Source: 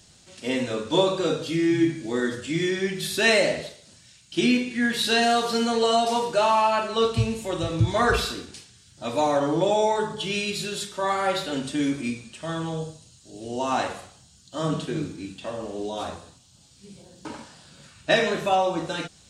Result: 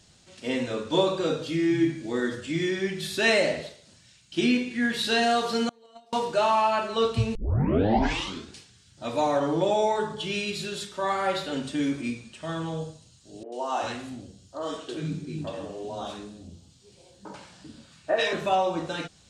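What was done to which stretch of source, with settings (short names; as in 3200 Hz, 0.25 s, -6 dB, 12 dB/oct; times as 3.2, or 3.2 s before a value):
5.69–6.13 gate -16 dBFS, range -32 dB
7.35 tape start 1.18 s
13.43–18.33 three bands offset in time mids, highs, lows 90/390 ms, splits 310/1500 Hz
whole clip: high shelf 8400 Hz -8.5 dB; gain -2 dB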